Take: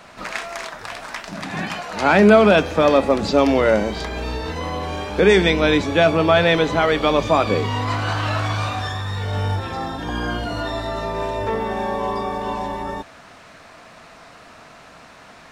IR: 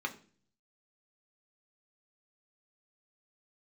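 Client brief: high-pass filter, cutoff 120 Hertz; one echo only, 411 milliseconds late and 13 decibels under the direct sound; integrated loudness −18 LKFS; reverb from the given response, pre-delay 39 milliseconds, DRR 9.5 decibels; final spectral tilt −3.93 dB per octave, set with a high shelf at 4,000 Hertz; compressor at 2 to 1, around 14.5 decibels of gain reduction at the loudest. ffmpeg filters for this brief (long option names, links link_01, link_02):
-filter_complex "[0:a]highpass=120,highshelf=frequency=4000:gain=-5,acompressor=threshold=-36dB:ratio=2,aecho=1:1:411:0.224,asplit=2[link_01][link_02];[1:a]atrim=start_sample=2205,adelay=39[link_03];[link_02][link_03]afir=irnorm=-1:irlink=0,volume=-13.5dB[link_04];[link_01][link_04]amix=inputs=2:normalize=0,volume=13dB"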